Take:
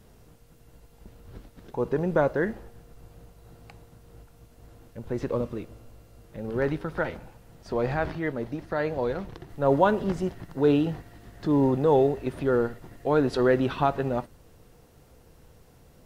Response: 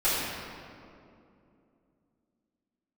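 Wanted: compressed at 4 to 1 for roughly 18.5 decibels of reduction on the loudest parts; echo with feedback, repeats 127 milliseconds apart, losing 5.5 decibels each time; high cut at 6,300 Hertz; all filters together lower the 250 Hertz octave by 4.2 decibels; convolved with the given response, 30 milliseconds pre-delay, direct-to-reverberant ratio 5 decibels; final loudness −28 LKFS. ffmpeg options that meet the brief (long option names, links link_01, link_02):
-filter_complex "[0:a]lowpass=6300,equalizer=frequency=250:width_type=o:gain=-5.5,acompressor=threshold=-40dB:ratio=4,aecho=1:1:127|254|381|508|635|762|889:0.531|0.281|0.149|0.079|0.0419|0.0222|0.0118,asplit=2[link_01][link_02];[1:a]atrim=start_sample=2205,adelay=30[link_03];[link_02][link_03]afir=irnorm=-1:irlink=0,volume=-19dB[link_04];[link_01][link_04]amix=inputs=2:normalize=0,volume=12.5dB"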